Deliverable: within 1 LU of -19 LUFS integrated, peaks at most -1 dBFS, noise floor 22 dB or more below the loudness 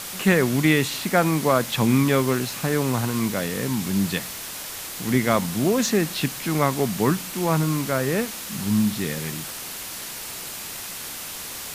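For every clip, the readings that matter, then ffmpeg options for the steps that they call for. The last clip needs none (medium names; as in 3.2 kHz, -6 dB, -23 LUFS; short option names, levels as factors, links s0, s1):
noise floor -35 dBFS; noise floor target -46 dBFS; loudness -23.5 LUFS; peak level -5.5 dBFS; loudness target -19.0 LUFS
-> -af "afftdn=nr=11:nf=-35"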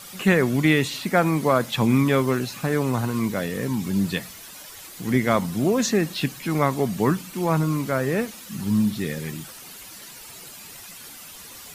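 noise floor -42 dBFS; noise floor target -45 dBFS
-> -af "afftdn=nr=6:nf=-42"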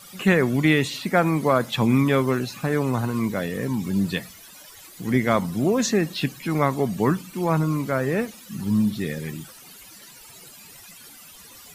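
noise floor -46 dBFS; loudness -23.0 LUFS; peak level -5.5 dBFS; loudness target -19.0 LUFS
-> -af "volume=1.58"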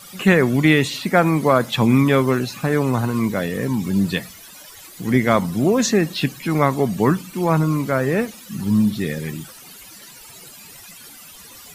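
loudness -19.0 LUFS; peak level -1.5 dBFS; noise floor -42 dBFS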